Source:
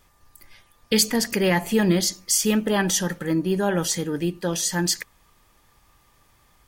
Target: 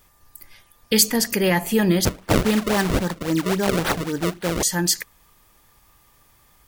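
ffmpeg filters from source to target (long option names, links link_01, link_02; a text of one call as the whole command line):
ffmpeg -i in.wav -filter_complex "[0:a]highshelf=frequency=11000:gain=10.5,asettb=1/sr,asplit=3[link_01][link_02][link_03];[link_01]atrim=end=2.054[link_04];[link_02]atrim=start=2.05:end=4.63,asetpts=PTS-STARTPTS,afade=type=in:duration=0.004:curve=qsin,afade=type=out:start_time=2.576:duration=0.004:curve=qsin,acrusher=samples=31:mix=1:aa=0.000001:lfo=1:lforange=49.6:lforate=3.7[link_05];[link_03]atrim=start=4.626[link_06];[link_04][link_05]acrossfade=duration=0.004:curve1=hsin:curve2=qsin[link_07];[link_07][link_06]acrossfade=duration=0.004:curve1=qsin:curve2=hsin,volume=1dB" out.wav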